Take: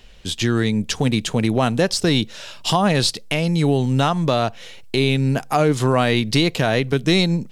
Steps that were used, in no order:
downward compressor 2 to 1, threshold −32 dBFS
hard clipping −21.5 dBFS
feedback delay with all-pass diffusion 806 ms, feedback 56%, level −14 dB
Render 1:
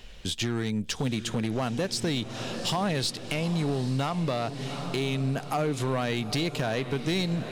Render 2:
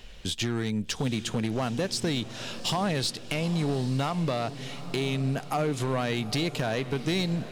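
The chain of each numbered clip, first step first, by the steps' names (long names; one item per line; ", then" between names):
feedback delay with all-pass diffusion, then downward compressor, then hard clipping
downward compressor, then hard clipping, then feedback delay with all-pass diffusion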